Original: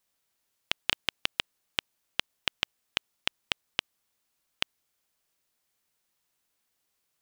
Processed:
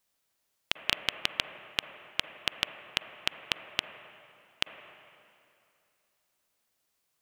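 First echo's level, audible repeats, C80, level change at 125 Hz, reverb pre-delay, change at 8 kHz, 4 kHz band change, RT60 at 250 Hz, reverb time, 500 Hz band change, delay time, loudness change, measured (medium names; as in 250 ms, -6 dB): no echo, no echo, 8.5 dB, 0.0 dB, 39 ms, 0.0 dB, 0.0 dB, 2.5 s, 2.6 s, +1.5 dB, no echo, 0.0 dB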